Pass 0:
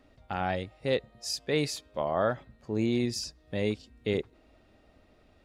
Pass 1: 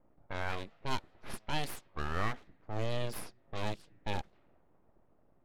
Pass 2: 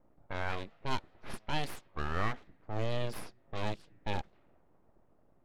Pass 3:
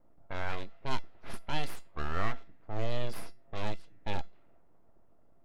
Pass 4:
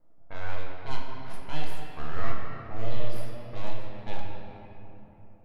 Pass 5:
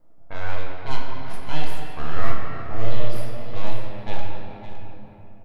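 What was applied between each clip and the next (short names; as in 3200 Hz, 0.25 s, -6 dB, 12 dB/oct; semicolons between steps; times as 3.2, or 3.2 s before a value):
full-wave rectifier; low-pass opened by the level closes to 840 Hz, open at -27.5 dBFS; gain -4 dB
high shelf 7400 Hz -8 dB; gain +1 dB
resonator 680 Hz, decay 0.24 s, harmonics all, mix 70%; gain +9 dB
shoebox room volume 200 m³, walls hard, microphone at 0.57 m; gain -4 dB
echo 0.561 s -12.5 dB; gain +6 dB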